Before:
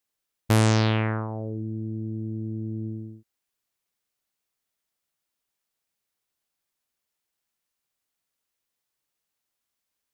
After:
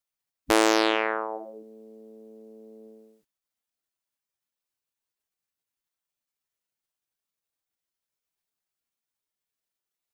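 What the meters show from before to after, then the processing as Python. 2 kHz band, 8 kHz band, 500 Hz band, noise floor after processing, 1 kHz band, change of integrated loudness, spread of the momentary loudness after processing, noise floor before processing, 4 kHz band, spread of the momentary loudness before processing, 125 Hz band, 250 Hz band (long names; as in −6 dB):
+4.5 dB, can't be measured, +4.5 dB, below −85 dBFS, +5.0 dB, +3.0 dB, 14 LU, −83 dBFS, +3.5 dB, 13 LU, below −30 dB, −2.5 dB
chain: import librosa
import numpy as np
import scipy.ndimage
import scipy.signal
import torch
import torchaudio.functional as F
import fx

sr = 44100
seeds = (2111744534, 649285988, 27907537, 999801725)

y = fx.cheby_harmonics(x, sr, harmonics=(2, 4), levels_db=(-14, -27), full_scale_db=-9.0)
y = fx.spec_gate(y, sr, threshold_db=-10, keep='weak')
y = F.gain(torch.from_numpy(y), 5.0).numpy()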